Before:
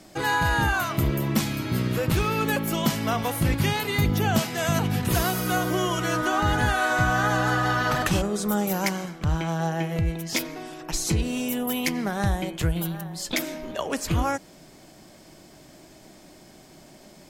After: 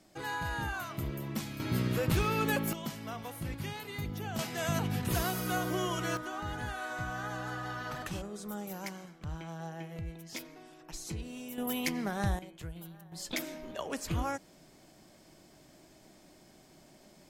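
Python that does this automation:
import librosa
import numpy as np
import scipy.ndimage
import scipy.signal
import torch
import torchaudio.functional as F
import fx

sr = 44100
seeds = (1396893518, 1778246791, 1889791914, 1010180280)

y = fx.gain(x, sr, db=fx.steps((0.0, -13.0), (1.6, -5.5), (2.73, -15.5), (4.39, -8.0), (6.17, -15.5), (11.58, -7.0), (12.39, -18.5), (13.12, -9.0)))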